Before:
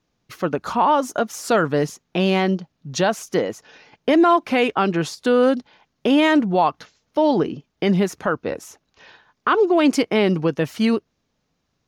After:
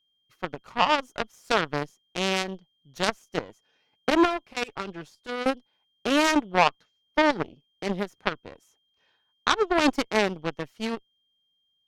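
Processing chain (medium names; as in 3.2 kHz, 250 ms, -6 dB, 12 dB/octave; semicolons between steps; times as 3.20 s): whistle 3.2 kHz -48 dBFS; 4.10–5.46 s: comb of notches 260 Hz; Chebyshev shaper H 3 -7 dB, 5 -22 dB, 8 -42 dB, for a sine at -7 dBFS; trim +2.5 dB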